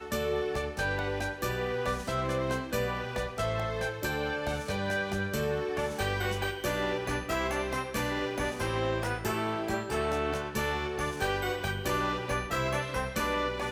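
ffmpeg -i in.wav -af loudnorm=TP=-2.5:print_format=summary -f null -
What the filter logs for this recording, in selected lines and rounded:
Input Integrated:    -31.4 LUFS
Input True Peak:     -16.9 dBTP
Input LRA:             0.9 LU
Input Threshold:     -41.4 LUFS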